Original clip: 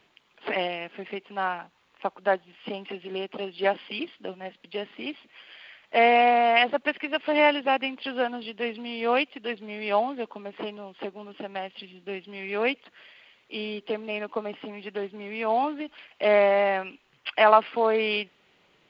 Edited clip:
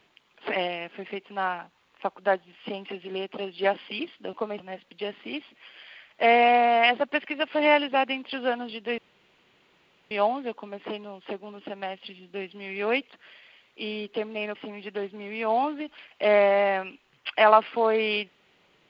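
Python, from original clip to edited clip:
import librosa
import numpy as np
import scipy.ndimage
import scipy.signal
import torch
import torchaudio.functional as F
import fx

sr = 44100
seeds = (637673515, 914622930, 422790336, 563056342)

y = fx.edit(x, sr, fx.room_tone_fill(start_s=8.71, length_s=1.13),
    fx.move(start_s=14.28, length_s=0.27, to_s=4.33), tone=tone)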